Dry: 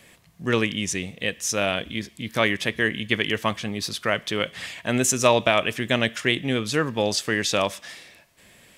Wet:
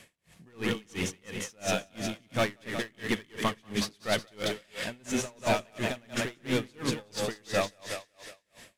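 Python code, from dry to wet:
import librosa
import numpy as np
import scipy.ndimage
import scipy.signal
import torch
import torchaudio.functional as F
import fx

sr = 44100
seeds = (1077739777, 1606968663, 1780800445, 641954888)

p1 = fx.cvsd(x, sr, bps=64000)
p2 = fx.rider(p1, sr, range_db=10, speed_s=0.5)
p3 = p1 + F.gain(torch.from_numpy(p2), 3.0).numpy()
p4 = np.clip(p3, -10.0 ** (-13.5 / 20.0), 10.0 ** (-13.5 / 20.0))
p5 = p4 + fx.echo_split(p4, sr, split_hz=350.0, low_ms=120, high_ms=184, feedback_pct=52, wet_db=-4, dry=0)
p6 = p5 * 10.0 ** (-33 * (0.5 - 0.5 * np.cos(2.0 * np.pi * 2.9 * np.arange(len(p5)) / sr)) / 20.0)
y = F.gain(torch.from_numpy(p6), -7.5).numpy()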